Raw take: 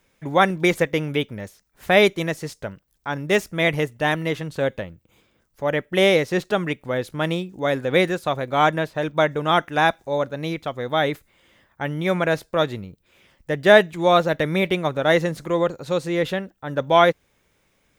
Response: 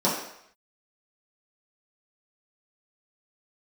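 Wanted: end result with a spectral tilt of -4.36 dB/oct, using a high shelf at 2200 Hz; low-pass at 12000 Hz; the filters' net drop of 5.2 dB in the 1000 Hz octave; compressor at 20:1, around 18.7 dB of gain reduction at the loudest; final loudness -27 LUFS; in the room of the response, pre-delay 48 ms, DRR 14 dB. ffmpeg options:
-filter_complex "[0:a]lowpass=12k,equalizer=f=1k:t=o:g=-8.5,highshelf=f=2.2k:g=3.5,acompressor=threshold=-28dB:ratio=20,asplit=2[a][b];[1:a]atrim=start_sample=2205,adelay=48[c];[b][c]afir=irnorm=-1:irlink=0,volume=-28.5dB[d];[a][d]amix=inputs=2:normalize=0,volume=6.5dB"

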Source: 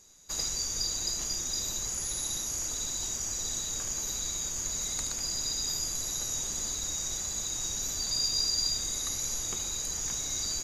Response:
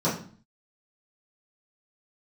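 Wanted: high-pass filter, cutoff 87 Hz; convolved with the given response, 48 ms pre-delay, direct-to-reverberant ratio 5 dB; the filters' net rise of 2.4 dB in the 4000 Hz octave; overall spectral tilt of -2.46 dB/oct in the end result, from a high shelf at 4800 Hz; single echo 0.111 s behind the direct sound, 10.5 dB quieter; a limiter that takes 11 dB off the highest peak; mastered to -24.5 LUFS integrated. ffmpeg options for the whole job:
-filter_complex "[0:a]highpass=87,equalizer=f=4k:t=o:g=6.5,highshelf=f=4.8k:g=-6.5,alimiter=level_in=3.5dB:limit=-24dB:level=0:latency=1,volume=-3.5dB,aecho=1:1:111:0.299,asplit=2[a][b];[1:a]atrim=start_sample=2205,adelay=48[c];[b][c]afir=irnorm=-1:irlink=0,volume=-18dB[d];[a][d]amix=inputs=2:normalize=0,volume=8.5dB"

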